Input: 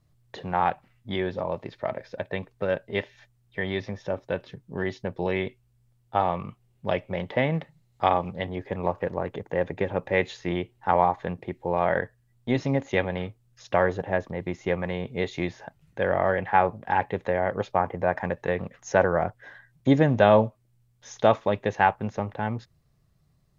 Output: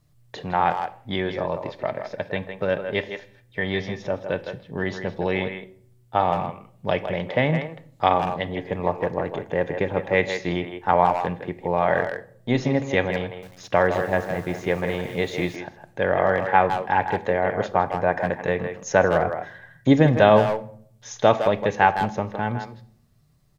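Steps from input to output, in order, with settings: high shelf 4300 Hz +5 dB; speakerphone echo 0.16 s, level -7 dB; reverb RT60 0.60 s, pre-delay 7 ms, DRR 12.5 dB; 13.22–15.56 lo-fi delay 0.205 s, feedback 55%, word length 7-bit, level -11.5 dB; gain +2.5 dB

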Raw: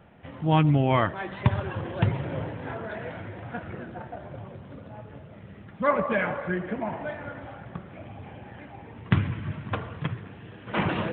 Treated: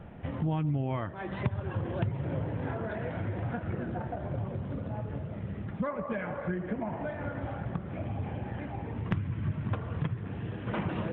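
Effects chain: compressor 5:1, threshold -37 dBFS, peak gain reduction 19.5 dB; tilt -2 dB/oct; gain +3 dB

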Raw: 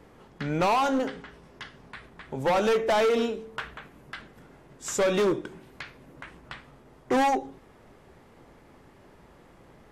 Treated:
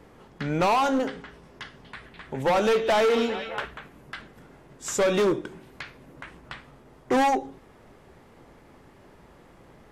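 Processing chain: 1.64–3.66 delay with a stepping band-pass 0.206 s, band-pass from 3300 Hz, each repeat -0.7 oct, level -4.5 dB; gain +1.5 dB

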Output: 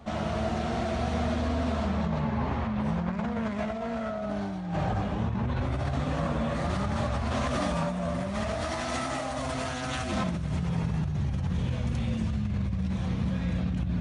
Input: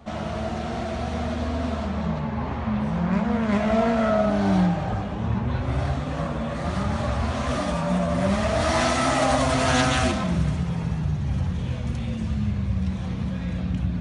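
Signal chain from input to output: negative-ratio compressor -26 dBFS, ratio -1; gain -3 dB

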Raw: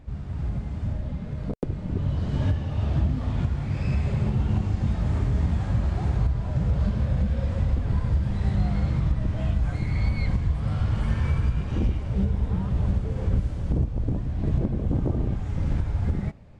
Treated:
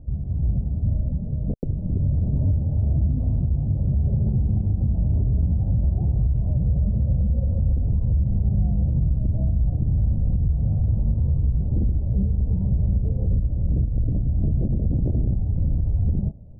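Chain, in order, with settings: steep low-pass 650 Hz 36 dB/oct; bell 440 Hz -9 dB 2.1 oct; limiter -21.5 dBFS, peak gain reduction 6.5 dB; gain +7.5 dB

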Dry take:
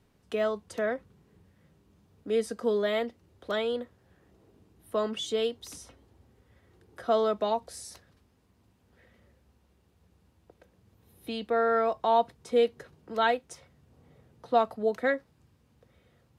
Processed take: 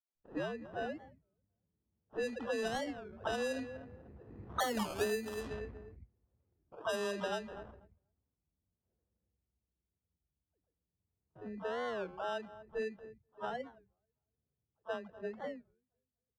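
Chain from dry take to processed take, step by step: tape start at the beginning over 0.50 s; Doppler pass-by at 4.83, 26 m/s, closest 7 m; high shelf 5900 Hz -11 dB; in parallel at +1.5 dB: vocal rider within 4 dB 2 s; on the sum: low shelf 140 Hz +7.5 dB; on a send: feedback echo 0.244 s, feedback 32%, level -18 dB; on the sum: gate -59 dBFS, range -20 dB; dispersion lows, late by 0.144 s, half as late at 350 Hz; sample-and-hold 20×; low-pass opened by the level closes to 1000 Hz, open at -29 dBFS; compressor 6:1, threshold -41 dBFS, peak gain reduction 20.5 dB; record warp 33 1/3 rpm, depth 250 cents; gain +7.5 dB

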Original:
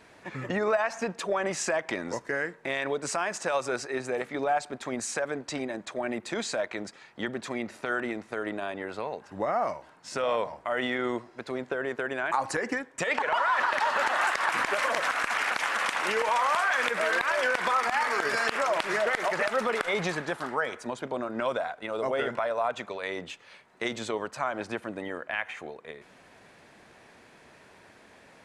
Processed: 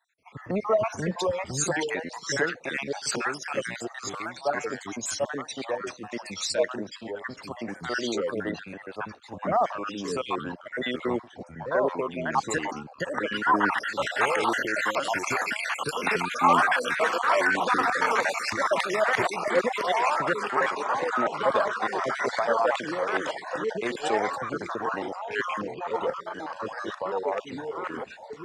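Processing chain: random spectral dropouts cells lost 63%; low shelf 69 Hz -8 dB; in parallel at -2 dB: limiter -23.5 dBFS, peak gain reduction 10.5 dB; on the sum: echoes that change speed 0.394 s, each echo -3 st, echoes 2; three-band expander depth 70%

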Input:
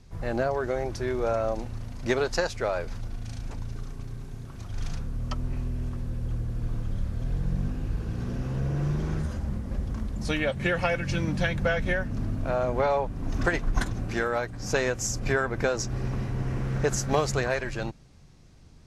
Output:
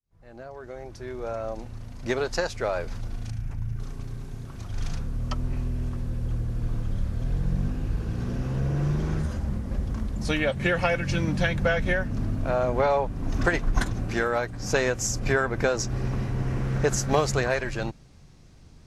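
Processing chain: opening faded in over 3.16 s; 3.3–3.8 ten-band EQ 125 Hz +6 dB, 250 Hz -5 dB, 500 Hz -9 dB, 1000 Hz -5 dB, 4000 Hz -11 dB, 8000 Hz -8 dB; gain +2 dB

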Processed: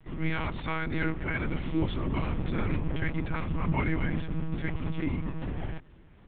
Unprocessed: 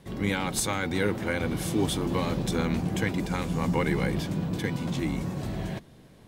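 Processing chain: LPF 3000 Hz 24 dB/oct; bell 520 Hz -14 dB 0.45 oct; monotone LPC vocoder at 8 kHz 160 Hz

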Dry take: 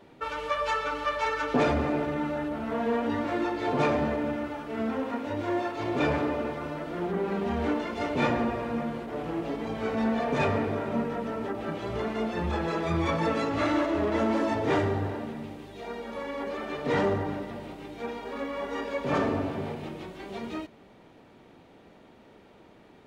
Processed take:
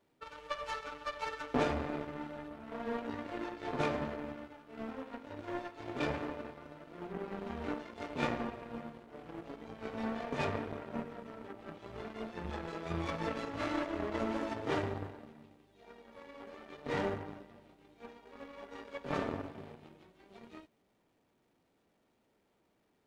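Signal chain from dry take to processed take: zero-crossing step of -39.5 dBFS; power-law curve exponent 2; gain -2 dB

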